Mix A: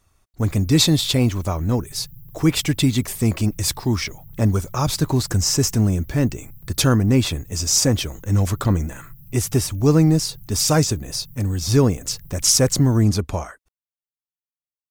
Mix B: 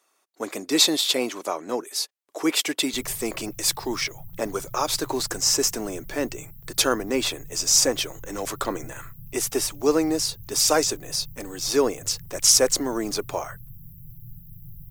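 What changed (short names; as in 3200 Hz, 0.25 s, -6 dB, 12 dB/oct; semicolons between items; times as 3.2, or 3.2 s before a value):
speech: add HPF 340 Hz 24 dB/oct; background: entry +2.55 s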